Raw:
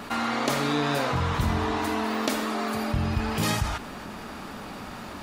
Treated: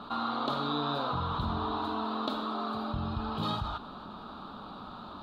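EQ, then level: FFT filter 130 Hz 0 dB, 190 Hz +3 dB, 500 Hz 0 dB, 1.3 kHz +8 dB, 2 kHz -18 dB, 3.9 kHz +9 dB, 5.5 kHz -18 dB, 8.6 kHz -21 dB, 13 kHz -19 dB; -9.0 dB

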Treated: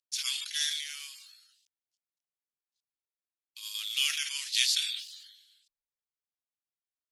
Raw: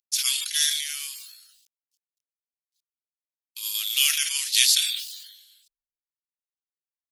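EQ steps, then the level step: distance through air 57 m; -5.0 dB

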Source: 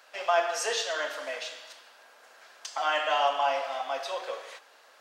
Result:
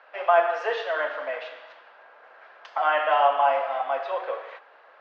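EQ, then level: band-pass 390–2000 Hz; distance through air 170 m; +7.0 dB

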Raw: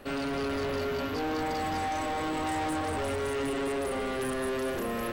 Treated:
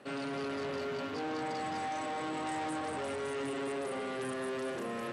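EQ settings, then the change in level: elliptic band-pass 120–9300 Hz, stop band 40 dB; -5.0 dB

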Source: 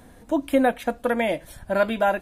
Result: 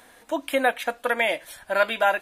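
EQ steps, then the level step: tone controls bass -14 dB, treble -6 dB; tilt shelf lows -7 dB, about 1.1 kHz; +2.5 dB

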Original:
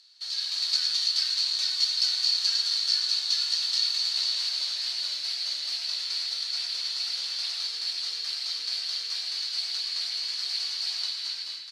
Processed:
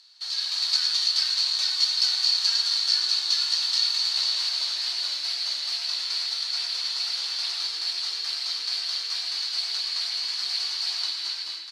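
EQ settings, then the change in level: rippled Chebyshev high-pass 240 Hz, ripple 6 dB; +8.0 dB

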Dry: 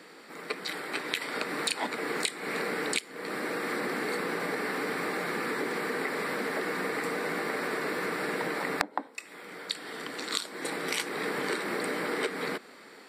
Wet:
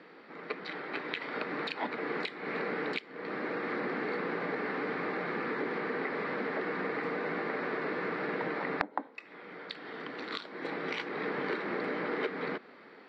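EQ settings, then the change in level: low-pass 6.2 kHz 12 dB/octave; distance through air 280 m; -1.0 dB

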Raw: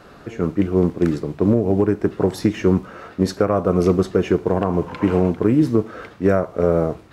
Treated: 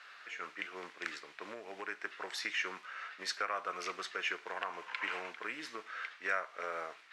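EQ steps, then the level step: resonant high-pass 1.9 kHz, resonance Q 1.6; Bessel low-pass 5.5 kHz, order 2; -3.5 dB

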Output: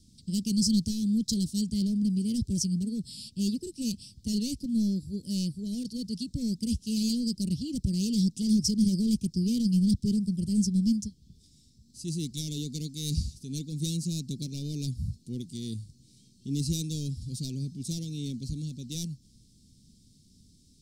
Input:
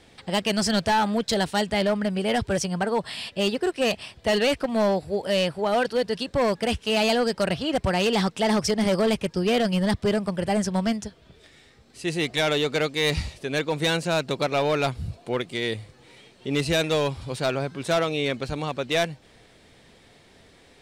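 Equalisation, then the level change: Chebyshev band-stop 230–5100 Hz, order 3; dynamic bell 350 Hz, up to +4 dB, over -41 dBFS, Q 1.6; 0.0 dB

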